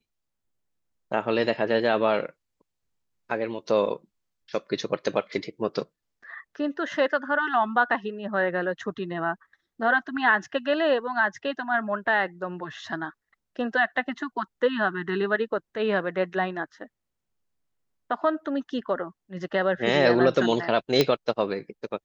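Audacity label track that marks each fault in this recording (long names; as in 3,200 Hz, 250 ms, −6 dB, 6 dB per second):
21.010000	21.010000	click −6 dBFS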